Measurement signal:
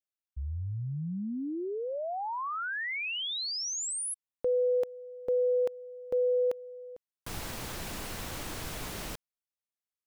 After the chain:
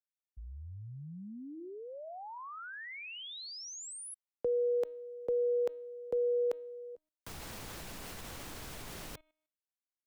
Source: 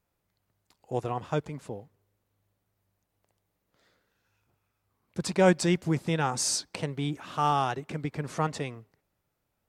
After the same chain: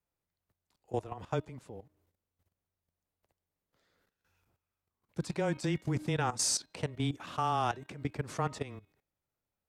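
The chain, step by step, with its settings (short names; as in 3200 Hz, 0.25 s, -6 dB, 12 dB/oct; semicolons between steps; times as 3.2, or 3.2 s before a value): de-hum 317.1 Hz, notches 13; frequency shift -13 Hz; level quantiser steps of 15 dB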